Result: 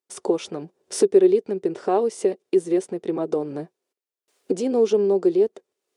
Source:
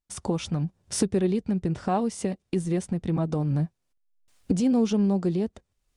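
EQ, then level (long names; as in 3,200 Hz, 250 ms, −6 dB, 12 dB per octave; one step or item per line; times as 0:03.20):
high-pass with resonance 400 Hz, resonance Q 4.9
0.0 dB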